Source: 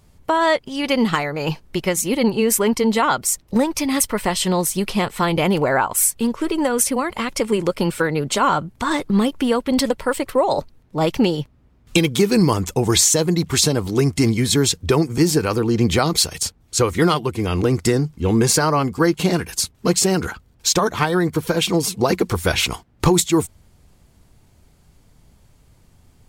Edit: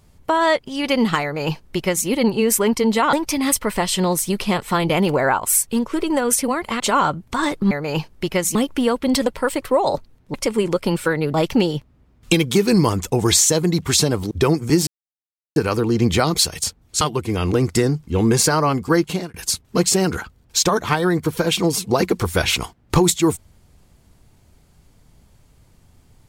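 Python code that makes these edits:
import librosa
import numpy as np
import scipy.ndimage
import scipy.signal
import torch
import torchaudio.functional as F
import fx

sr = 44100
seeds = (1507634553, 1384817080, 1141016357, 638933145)

y = fx.edit(x, sr, fx.duplicate(start_s=1.23, length_s=0.84, to_s=9.19),
    fx.cut(start_s=3.13, length_s=0.48),
    fx.move(start_s=7.28, length_s=1.0, to_s=10.98),
    fx.cut(start_s=13.95, length_s=0.84),
    fx.insert_silence(at_s=15.35, length_s=0.69),
    fx.cut(start_s=16.8, length_s=0.31),
    fx.fade_out_span(start_s=19.11, length_s=0.33), tone=tone)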